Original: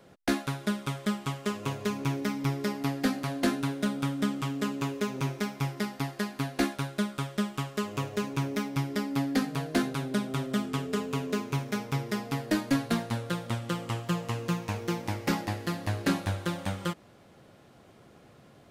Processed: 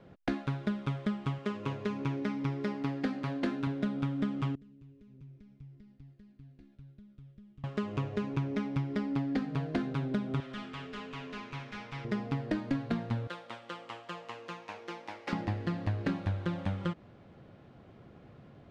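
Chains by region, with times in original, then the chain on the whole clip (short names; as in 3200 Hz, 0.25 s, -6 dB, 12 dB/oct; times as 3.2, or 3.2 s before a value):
1.38–3.67 low shelf 120 Hz -11 dB + notch 710 Hz, Q 14
4.55–7.64 compressor, threshold -35 dBFS + passive tone stack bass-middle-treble 10-0-1 + mismatched tape noise reduction decoder only
10.4–12.05 passive tone stack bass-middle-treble 5-5-5 + overdrive pedal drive 24 dB, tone 2800 Hz, clips at -29 dBFS
13.27–15.33 HPF 670 Hz + bell 1400 Hz -3 dB 2.5 oct
whole clip: LPF 3300 Hz 12 dB/oct; low shelf 270 Hz +8.5 dB; compressor, threshold -25 dBFS; gain -3 dB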